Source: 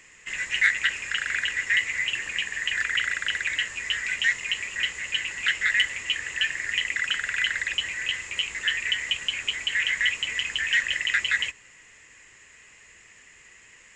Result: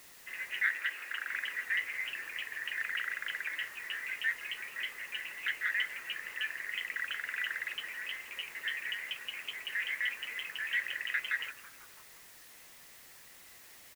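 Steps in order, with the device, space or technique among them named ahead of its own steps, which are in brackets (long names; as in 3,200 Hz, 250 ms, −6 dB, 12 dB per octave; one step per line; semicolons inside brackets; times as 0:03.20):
wax cylinder (band-pass filter 370–2,200 Hz; tape wow and flutter; white noise bed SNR 17 dB)
0:00.71–0:01.30: Chebyshev high-pass filter 250 Hz, order 6
echo with shifted repeats 165 ms, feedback 58%, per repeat −150 Hz, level −18 dB
level −7.5 dB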